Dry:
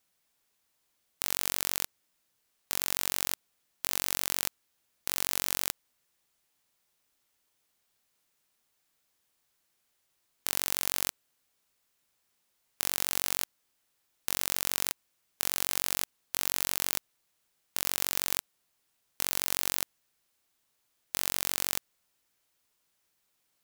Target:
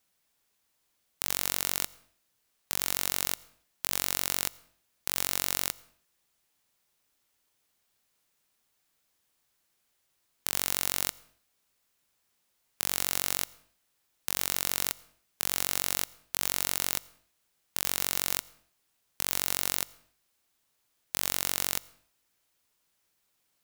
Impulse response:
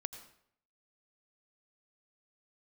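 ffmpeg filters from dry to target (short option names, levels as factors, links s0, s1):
-filter_complex "[0:a]asplit=2[s0][s1];[1:a]atrim=start_sample=2205,afade=t=out:st=0.39:d=0.01,atrim=end_sample=17640,lowshelf=f=190:g=5.5[s2];[s1][s2]afir=irnorm=-1:irlink=0,volume=0.376[s3];[s0][s3]amix=inputs=2:normalize=0,volume=0.841"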